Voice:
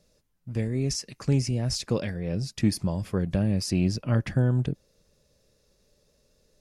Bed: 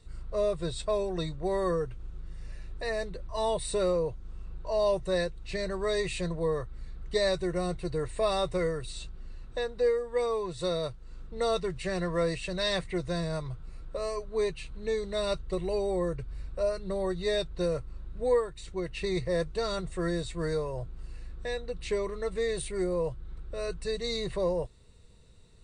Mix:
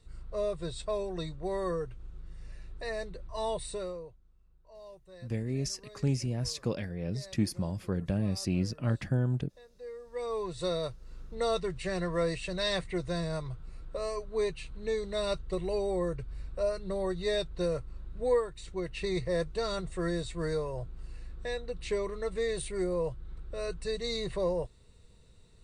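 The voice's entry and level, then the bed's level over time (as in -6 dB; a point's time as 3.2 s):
4.75 s, -5.5 dB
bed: 3.61 s -4 dB
4.35 s -23.5 dB
9.69 s -23.5 dB
10.41 s -1.5 dB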